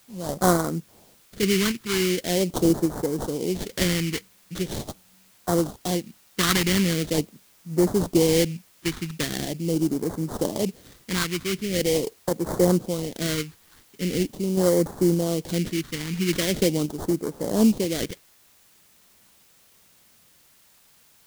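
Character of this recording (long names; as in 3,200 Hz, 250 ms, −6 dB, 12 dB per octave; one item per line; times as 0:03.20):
aliases and images of a low sample rate 2,600 Hz, jitter 20%
phaser sweep stages 2, 0.42 Hz, lowest notch 600–2,600 Hz
sample-and-hold tremolo
a quantiser's noise floor 10 bits, dither triangular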